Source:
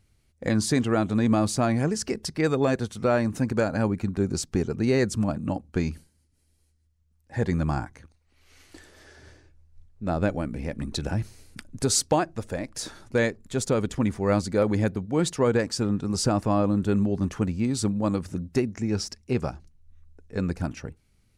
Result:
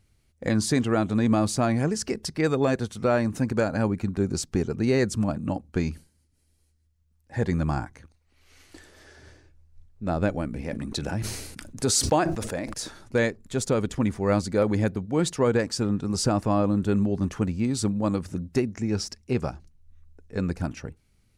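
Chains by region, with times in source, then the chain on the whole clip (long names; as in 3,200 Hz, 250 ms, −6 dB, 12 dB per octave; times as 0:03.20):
0:10.61–0:12.74: low-shelf EQ 73 Hz −11.5 dB + level that may fall only so fast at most 46 dB per second
whole clip: no processing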